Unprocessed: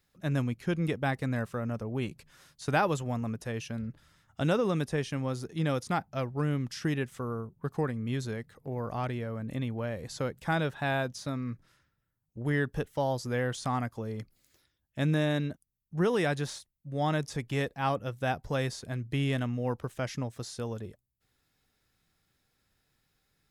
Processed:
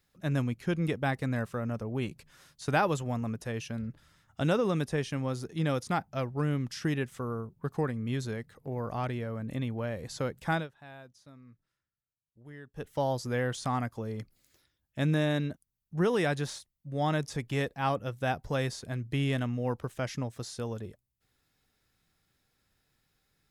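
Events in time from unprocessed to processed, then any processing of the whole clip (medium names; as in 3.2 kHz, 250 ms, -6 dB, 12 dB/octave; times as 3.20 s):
10.54–12.89 s: dip -19 dB, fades 0.14 s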